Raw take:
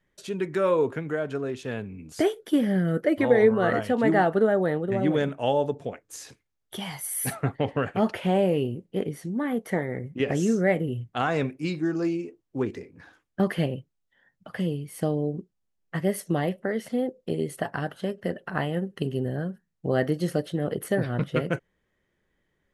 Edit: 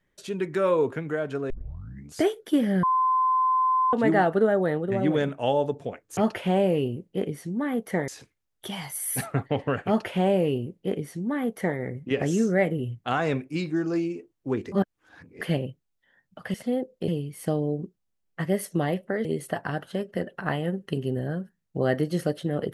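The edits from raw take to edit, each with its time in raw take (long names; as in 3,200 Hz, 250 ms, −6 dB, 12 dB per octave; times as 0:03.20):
0:01.50: tape start 0.62 s
0:02.83–0:03.93: beep over 1,030 Hz −19 dBFS
0:07.96–0:09.87: duplicate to 0:06.17
0:12.81–0:13.50: reverse
0:16.80–0:17.34: move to 0:14.63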